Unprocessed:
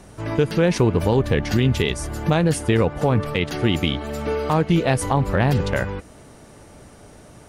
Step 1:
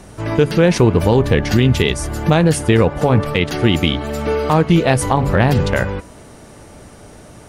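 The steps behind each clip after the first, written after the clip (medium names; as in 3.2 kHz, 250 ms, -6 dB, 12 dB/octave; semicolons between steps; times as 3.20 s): de-hum 139.4 Hz, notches 12; trim +5.5 dB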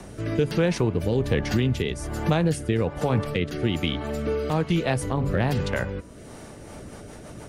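rotary cabinet horn 1.2 Hz, later 7 Hz, at 6.27 s; three bands compressed up and down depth 40%; trim -8 dB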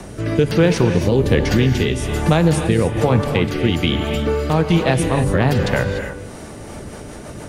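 gated-style reverb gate 320 ms rising, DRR 6 dB; trim +7 dB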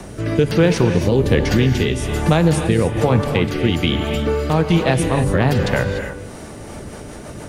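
word length cut 12-bit, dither triangular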